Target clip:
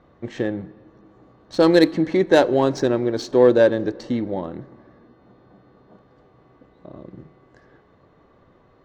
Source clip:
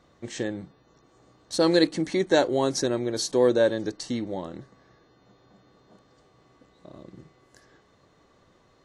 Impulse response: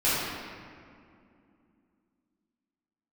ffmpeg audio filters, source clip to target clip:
-filter_complex "[0:a]adynamicsmooth=sensitivity=1:basefreq=2300,asplit=2[s0][s1];[1:a]atrim=start_sample=2205[s2];[s1][s2]afir=irnorm=-1:irlink=0,volume=0.0211[s3];[s0][s3]amix=inputs=2:normalize=0,volume=2"

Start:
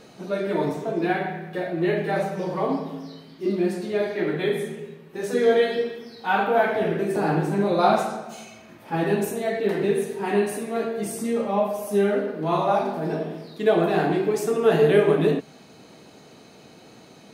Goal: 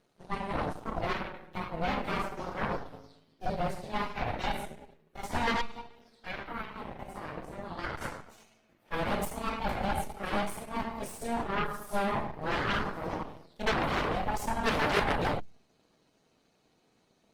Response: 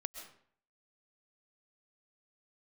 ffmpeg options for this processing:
-filter_complex "[0:a]asplit=3[s0][s1][s2];[s0]afade=t=out:st=5.6:d=0.02[s3];[s1]acompressor=threshold=0.0224:ratio=2,afade=t=in:st=5.6:d=0.02,afade=t=out:st=8.01:d=0.02[s4];[s2]afade=t=in:st=8.01:d=0.02[s5];[s3][s4][s5]amix=inputs=3:normalize=0,aeval=exprs='0.473*(cos(1*acos(clip(val(0)/0.473,-1,1)))-cos(1*PI/2))+0.188*(cos(3*acos(clip(val(0)/0.473,-1,1)))-cos(3*PI/2))+0.119*(cos(8*acos(clip(val(0)/0.473,-1,1)))-cos(8*PI/2))':c=same,volume=0.422" -ar 48000 -c:a libopus -b:a 24k

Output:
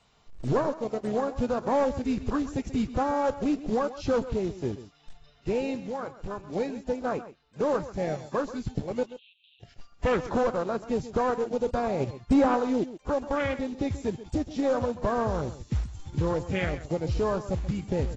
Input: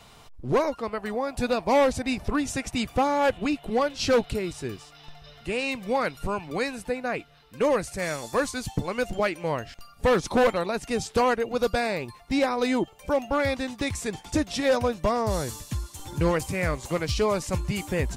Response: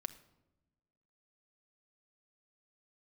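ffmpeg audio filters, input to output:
-filter_complex "[0:a]afwtdn=0.0501,asplit=3[s0][s1][s2];[s0]afade=t=out:st=5.8:d=0.02[s3];[s1]acompressor=threshold=0.01:ratio=2.5,afade=t=in:st=5.8:d=0.02,afade=t=out:st=6.55:d=0.02[s4];[s2]afade=t=in:st=6.55:d=0.02[s5];[s3][s4][s5]amix=inputs=3:normalize=0,alimiter=limit=0.0891:level=0:latency=1:release=315,asplit=3[s6][s7][s8];[s6]afade=t=out:st=11.99:d=0.02[s9];[s7]acontrast=48,afade=t=in:st=11.99:d=0.02,afade=t=out:st=12.56:d=0.02[s10];[s8]afade=t=in:st=12.56:d=0.02[s11];[s9][s10][s11]amix=inputs=3:normalize=0,aeval=exprs='0.178*(cos(1*acos(clip(val(0)/0.178,-1,1)))-cos(1*PI/2))+0.0112*(cos(2*acos(clip(val(0)/0.178,-1,1)))-cos(2*PI/2))+0.00562*(cos(3*acos(clip(val(0)/0.178,-1,1)))-cos(3*PI/2))':c=same,acrusher=bits=5:mode=log:mix=0:aa=0.000001,asoftclip=type=tanh:threshold=0.119,asettb=1/sr,asplit=3[s12][s13][s14];[s12]atrim=end=9.034[s15];[s13]atrim=start=9.03:end=9.63,asetpts=PTS-STARTPTS,afade=t=in:d=0.004:c=qsin,afade=t=out:st=0.596:d=0.004:c=qsin,asuperpass=centerf=3200:order=12:qfactor=2.4[s16];[s14]atrim=start=9.626[s17];[s15][s16]acrossfade=d=0.004:c1=hsin:c2=qsin[s18];[s18][s17]acrossfade=d=0.004:c1=qsin:c2=hsin,aecho=1:1:132:0.188,volume=1.58" -ar 24000 -c:a aac -b:a 24k

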